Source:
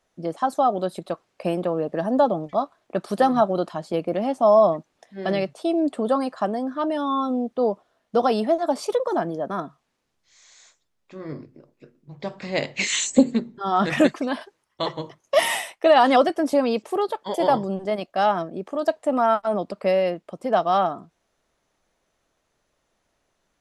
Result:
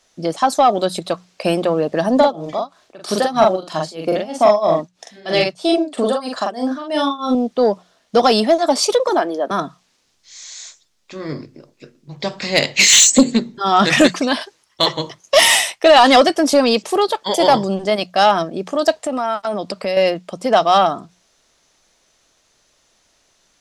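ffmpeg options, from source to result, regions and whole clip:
-filter_complex "[0:a]asettb=1/sr,asplit=3[s0][s1][s2];[s0]atrim=end=2.164[s3];[s1]atrim=start=2.16:end=7.35,asetpts=PTS-STARTPTS,afade=t=in:d=0.004:c=qsin,afade=t=out:st=5.186:d=0.004:c=qsin,equalizer=f=190:w=7.1:g=-6,tremolo=f=3.1:d=0.93,asplit=2[s4][s5];[s5]adelay=43,volume=0.794[s6];[s4][s6]amix=inputs=2:normalize=0,atrim=end_sample=228879[s7];[s2]atrim=start=7.346[s8];[s3][s7]acrossfade=d=0.004:c1=hsin:c2=qsin[s9];[s9][s8]acrossfade=d=0.004:c1=qsin:c2=hsin,asettb=1/sr,asplit=3[s10][s11][s12];[s10]atrim=end=9.094[s13];[s11]atrim=start=9.09:end=9.51,asetpts=PTS-STARTPTS,afade=t=in:d=0.004:c=qsin,afade=t=out:st=0.416:d=0.004:c=qsin,highpass=f=280:w=0.5412,highpass=f=280:w=1.3066,equalizer=f=6700:t=o:w=0.91:g=-7.5[s14];[s12]atrim=start=9.506[s15];[s13][s14]acrossfade=d=0.004:c1=hsin:c2=qsin[s16];[s16][s15]acrossfade=d=0.004:c1=qsin:c2=hsin,asettb=1/sr,asplit=3[s17][s18][s19];[s17]atrim=end=18.964[s20];[s18]atrim=start=18.96:end=19.97,asetpts=PTS-STARTPTS,afade=t=in:d=0.004:c=qsin,afade=t=out:st=1.006:d=0.004:c=qsin,highpass=43,acompressor=threshold=0.0447:ratio=3:attack=3.2:release=140:knee=1:detection=peak[s21];[s19]atrim=start=19.966[s22];[s20][s21]acrossfade=d=0.004:c1=hsin:c2=qsin[s23];[s23][s22]acrossfade=d=0.004:c1=qsin:c2=hsin,equalizer=f=5400:t=o:w=2.1:g=12.5,bandreject=f=60:t=h:w=6,bandreject=f=120:t=h:w=6,bandreject=f=180:t=h:w=6,acontrast=79"

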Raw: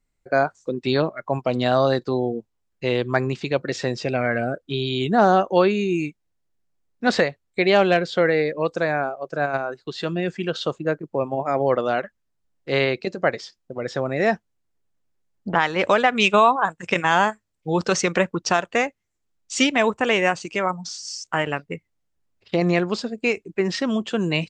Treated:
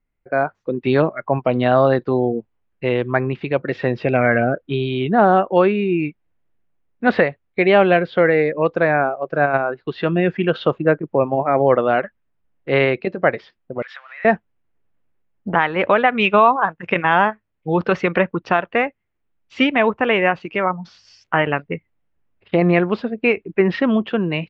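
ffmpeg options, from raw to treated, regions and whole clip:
-filter_complex "[0:a]asettb=1/sr,asplit=3[s0][s1][s2];[s0]atrim=end=13.824[s3];[s1]atrim=start=13.82:end=14.25,asetpts=PTS-STARTPTS,afade=t=in:d=0.004:c=qsin,afade=t=out:st=0.426:d=0.004:c=qsin,aeval=exprs='val(0)+0.5*0.0188*sgn(val(0))':c=same,acompressor=threshold=0.0501:ratio=10:attack=3.2:release=140:knee=1:detection=peak,highpass=f=1300:w=0.5412,highpass=f=1300:w=1.3066[s4];[s2]atrim=start=14.246[s5];[s3][s4]acrossfade=d=0.004:c1=hsin:c2=qsin[s6];[s6][s5]acrossfade=d=0.004:c1=qsin:c2=hsin,lowpass=f=2800:w=0.5412,lowpass=f=2800:w=1.3066,dynaudnorm=f=120:g=9:m=3.76,volume=0.891"

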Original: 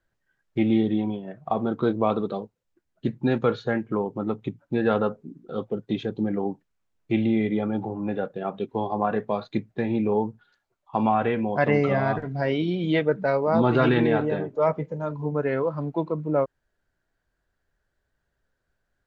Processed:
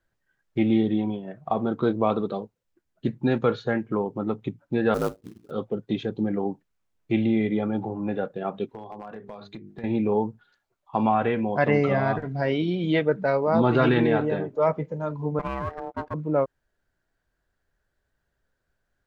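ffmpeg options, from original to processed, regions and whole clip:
-filter_complex "[0:a]asettb=1/sr,asplit=3[s0][s1][s2];[s0]atrim=end=4.944[s3];[s1]atrim=start=4.94:end=5.51,asetpts=PTS-STARTPTS,afade=t=in:d=0.004:c=qsin,afade=t=out:st=0.566:d=0.004:c=qsin,lowpass=f=1800:w=0.5412,lowpass=f=1800:w=1.3066,acrusher=bits=4:mode=log:mix=0:aa=0.000001,aeval=exprs='val(0)*sin(2*PI*54*n/s)':c=same[s4];[s2]atrim=start=5.506[s5];[s3][s4]acrossfade=d=0.004:c1=hsin:c2=qsin[s6];[s6][s5]acrossfade=d=0.004:c1=qsin:c2=hsin,asettb=1/sr,asplit=3[s7][s8][s9];[s7]atrim=end=8.694[s10];[s8]atrim=start=8.69:end=9.84,asetpts=PTS-STARTPTS,afade=t=in:d=0.004:c=qsin,afade=t=out:st=1.146:d=0.004:c=qsin,bandreject=f=50:t=h:w=6,bandreject=f=100:t=h:w=6,bandreject=f=150:t=h:w=6,bandreject=f=200:t=h:w=6,bandreject=f=250:t=h:w=6,bandreject=f=300:t=h:w=6,bandreject=f=350:t=h:w=6,bandreject=f=400:t=h:w=6,bandreject=f=450:t=h:w=6,acompressor=threshold=0.0158:ratio=5:attack=3.2:release=140:knee=1:detection=peak,asoftclip=type=hard:threshold=0.0299[s11];[s9]atrim=start=9.836[s12];[s10][s11]acrossfade=d=0.004:c1=hsin:c2=qsin[s13];[s13][s12]acrossfade=d=0.004:c1=qsin:c2=hsin,asettb=1/sr,asplit=3[s14][s15][s16];[s14]atrim=end=15.394[s17];[s15]atrim=start=15.39:end=16.14,asetpts=PTS-STARTPTS,afade=t=in:d=0.004:c=qsin,afade=t=out:st=0.746:d=0.004:c=qsin,aeval=exprs='if(lt(val(0),0),0.251*val(0),val(0))':c=same,agate=range=0.0224:threshold=0.0178:ratio=3:release=100:detection=peak,aeval=exprs='val(0)*sin(2*PI*600*n/s)':c=same[s18];[s16]atrim=start=16.136[s19];[s17][s18]acrossfade=d=0.004:c1=hsin:c2=qsin[s20];[s20][s19]acrossfade=d=0.004:c1=qsin:c2=hsin"

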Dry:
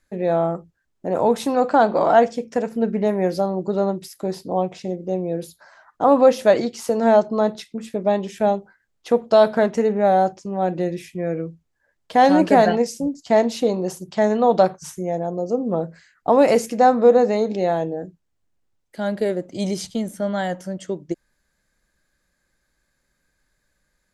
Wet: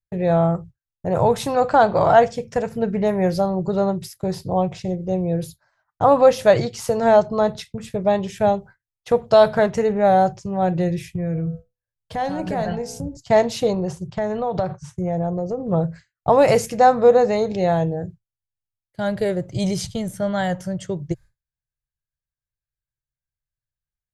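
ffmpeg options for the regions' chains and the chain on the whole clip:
-filter_complex "[0:a]asettb=1/sr,asplit=3[s0][s1][s2];[s0]atrim=end=11.094[s3];[s1]atrim=start=11.09:end=13.17,asetpts=PTS-STARTPTS,afade=t=in:d=0.004:c=qsin,afade=t=out:st=2.076:d=0.004:c=qsin,lowshelf=f=340:g=7,bandreject=f=61.58:t=h:w=4,bandreject=f=123.16:t=h:w=4,bandreject=f=184.74:t=h:w=4,bandreject=f=246.32:t=h:w=4,bandreject=f=307.9:t=h:w=4,bandreject=f=369.48:t=h:w=4,bandreject=f=431.06:t=h:w=4,bandreject=f=492.64:t=h:w=4,bandreject=f=554.22:t=h:w=4,bandreject=f=615.8:t=h:w=4,bandreject=f=677.38:t=h:w=4,bandreject=f=738.96:t=h:w=4,bandreject=f=800.54:t=h:w=4,bandreject=f=862.12:t=h:w=4,bandreject=f=923.7:t=h:w=4,bandreject=f=985.28:t=h:w=4,bandreject=f=1046.86:t=h:w=4,bandreject=f=1108.44:t=h:w=4,bandreject=f=1170.02:t=h:w=4,bandreject=f=1231.6:t=h:w=4,bandreject=f=1293.18:t=h:w=4,bandreject=f=1354.76:t=h:w=4,bandreject=f=1416.34:t=h:w=4,bandreject=f=1477.92:t=h:w=4,bandreject=f=1539.5:t=h:w=4,bandreject=f=1601.08:t=h:w=4,acompressor=threshold=0.0282:ratio=2:attack=3.2:release=140:knee=1:detection=peak[s4];[s2]atrim=start=13.166[s5];[s3][s4]acrossfade=d=0.004:c1=hsin:c2=qsin[s6];[s6][s5]acrossfade=d=0.004:c1=qsin:c2=hsin,asettb=1/sr,asplit=3[s7][s8][s9];[s7]atrim=end=13.734[s10];[s8]atrim=start=13.73:end=15.68,asetpts=PTS-STARTPTS,afade=t=in:d=0.004:c=qsin,afade=t=out:st=1.946:d=0.004:c=qsin,lowpass=f=9900:w=0.5412,lowpass=f=9900:w=1.3066,highshelf=f=3600:g=-9,acompressor=threshold=0.1:ratio=4:attack=3.2:release=140:knee=1:detection=peak[s11];[s9]atrim=start=15.676[s12];[s10][s11]acrossfade=d=0.004:c1=hsin:c2=qsin[s13];[s13][s12]acrossfade=d=0.004:c1=qsin:c2=hsin,agate=range=0.0224:threshold=0.0158:ratio=3:detection=peak,lowshelf=f=170:t=q:w=3:g=12,volume=1.26"

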